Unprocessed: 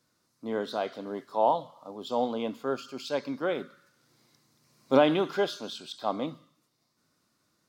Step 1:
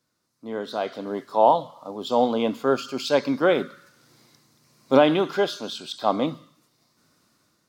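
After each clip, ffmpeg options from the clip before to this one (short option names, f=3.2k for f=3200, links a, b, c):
-af "dynaudnorm=f=320:g=5:m=13dB,volume=-2.5dB"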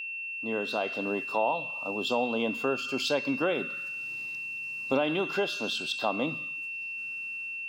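-af "equalizer=f=3.1k:t=o:w=0.23:g=5,acompressor=threshold=-27dB:ratio=3,aeval=exprs='val(0)+0.02*sin(2*PI*2700*n/s)':c=same"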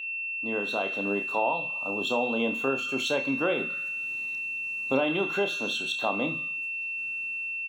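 -filter_complex "[0:a]asuperstop=centerf=4900:order=8:qfactor=4.7,asplit=2[a][b];[b]aecho=0:1:30|70:0.376|0.15[c];[a][c]amix=inputs=2:normalize=0"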